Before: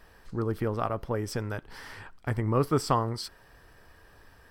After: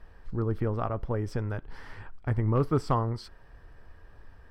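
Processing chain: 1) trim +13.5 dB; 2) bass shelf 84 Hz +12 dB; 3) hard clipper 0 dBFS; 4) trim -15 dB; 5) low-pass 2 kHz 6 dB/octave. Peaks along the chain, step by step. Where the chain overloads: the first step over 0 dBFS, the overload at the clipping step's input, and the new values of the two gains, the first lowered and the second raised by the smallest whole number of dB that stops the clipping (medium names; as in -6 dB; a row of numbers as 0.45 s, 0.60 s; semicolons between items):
+3.0 dBFS, +4.5 dBFS, 0.0 dBFS, -15.0 dBFS, -15.0 dBFS; step 1, 4.5 dB; step 1 +8.5 dB, step 4 -10 dB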